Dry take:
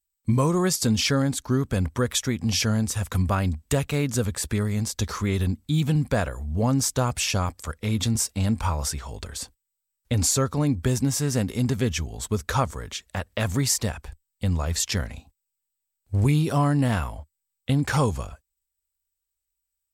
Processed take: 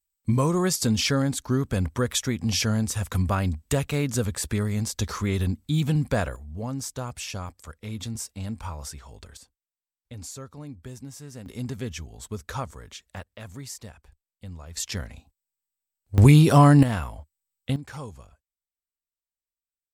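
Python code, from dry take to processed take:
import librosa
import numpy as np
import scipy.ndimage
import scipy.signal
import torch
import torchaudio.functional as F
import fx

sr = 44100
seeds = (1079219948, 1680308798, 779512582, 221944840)

y = fx.gain(x, sr, db=fx.steps((0.0, -1.0), (6.36, -9.5), (9.37, -17.0), (11.46, -8.5), (13.23, -15.5), (14.77, -5.5), (16.18, 7.0), (16.83, -3.0), (17.76, -15.5)))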